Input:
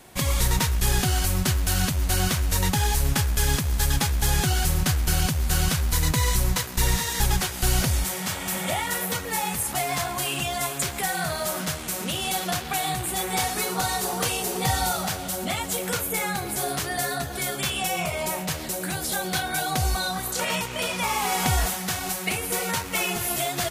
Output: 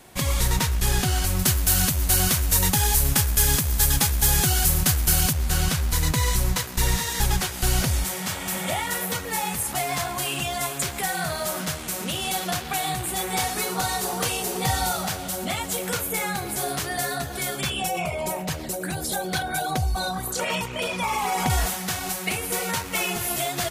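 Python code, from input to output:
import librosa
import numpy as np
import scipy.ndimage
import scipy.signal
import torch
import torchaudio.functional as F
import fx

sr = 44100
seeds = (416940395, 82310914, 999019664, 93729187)

y = fx.high_shelf(x, sr, hz=7500.0, db=11.5, at=(1.39, 5.33))
y = fx.envelope_sharpen(y, sr, power=1.5, at=(17.61, 21.5))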